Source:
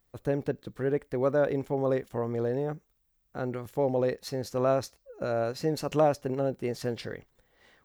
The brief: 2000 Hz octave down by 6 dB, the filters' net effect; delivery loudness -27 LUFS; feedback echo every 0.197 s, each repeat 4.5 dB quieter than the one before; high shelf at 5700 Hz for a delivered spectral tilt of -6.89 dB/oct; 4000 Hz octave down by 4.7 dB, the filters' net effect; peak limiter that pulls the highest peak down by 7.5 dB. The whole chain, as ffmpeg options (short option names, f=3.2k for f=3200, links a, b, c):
-af "equalizer=f=2k:t=o:g=-8,equalizer=f=4k:t=o:g=-5.5,highshelf=f=5.7k:g=3,alimiter=limit=-21dB:level=0:latency=1,aecho=1:1:197|394|591|788|985|1182|1379|1576|1773:0.596|0.357|0.214|0.129|0.0772|0.0463|0.0278|0.0167|0.01,volume=4dB"